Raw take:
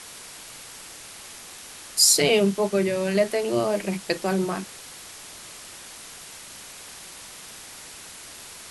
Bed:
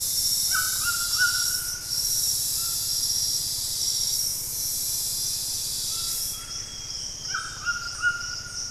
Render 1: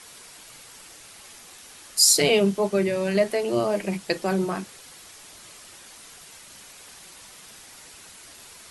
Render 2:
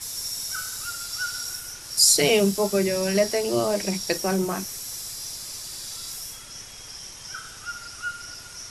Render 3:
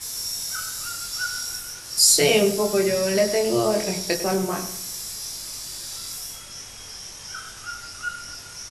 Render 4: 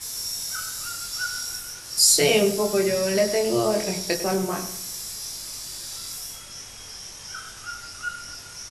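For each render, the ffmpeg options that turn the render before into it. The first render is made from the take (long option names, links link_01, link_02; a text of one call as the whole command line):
ffmpeg -i in.wav -af "afftdn=noise_reduction=6:noise_floor=-43" out.wav
ffmpeg -i in.wav -i bed.wav -filter_complex "[1:a]volume=-7.5dB[link_01];[0:a][link_01]amix=inputs=2:normalize=0" out.wav
ffmpeg -i in.wav -filter_complex "[0:a]asplit=2[link_01][link_02];[link_02]adelay=23,volume=-4dB[link_03];[link_01][link_03]amix=inputs=2:normalize=0,asplit=2[link_04][link_05];[link_05]adelay=100,lowpass=frequency=2000:poles=1,volume=-10dB,asplit=2[link_06][link_07];[link_07]adelay=100,lowpass=frequency=2000:poles=1,volume=0.41,asplit=2[link_08][link_09];[link_09]adelay=100,lowpass=frequency=2000:poles=1,volume=0.41,asplit=2[link_10][link_11];[link_11]adelay=100,lowpass=frequency=2000:poles=1,volume=0.41[link_12];[link_04][link_06][link_08][link_10][link_12]amix=inputs=5:normalize=0" out.wav
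ffmpeg -i in.wav -af "volume=-1dB" out.wav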